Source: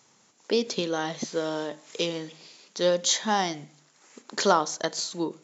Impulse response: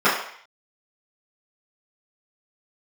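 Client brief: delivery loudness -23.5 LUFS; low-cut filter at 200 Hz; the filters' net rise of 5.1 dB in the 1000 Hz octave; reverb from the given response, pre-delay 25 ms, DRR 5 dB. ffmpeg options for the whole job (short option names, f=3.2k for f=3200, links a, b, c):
-filter_complex "[0:a]highpass=200,equalizer=f=1k:t=o:g=6.5,asplit=2[a][b];[1:a]atrim=start_sample=2205,adelay=25[c];[b][c]afir=irnorm=-1:irlink=0,volume=-27.5dB[d];[a][d]amix=inputs=2:normalize=0,volume=0.5dB"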